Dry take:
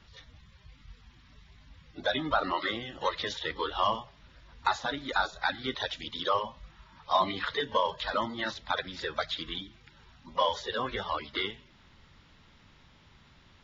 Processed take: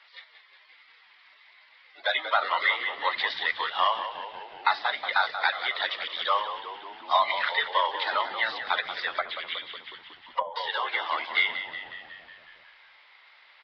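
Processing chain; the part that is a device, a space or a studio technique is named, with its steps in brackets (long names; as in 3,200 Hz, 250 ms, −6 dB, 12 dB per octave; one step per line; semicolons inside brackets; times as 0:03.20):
musical greeting card (downsampling to 11,025 Hz; high-pass filter 640 Hz 24 dB per octave; parametric band 2,100 Hz +10 dB 0.31 octaves)
echo with shifted repeats 183 ms, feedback 63%, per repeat −63 Hz, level −10.5 dB
0:09.16–0:10.56: treble cut that deepens with the level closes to 420 Hz, closed at −23.5 dBFS
level +3.5 dB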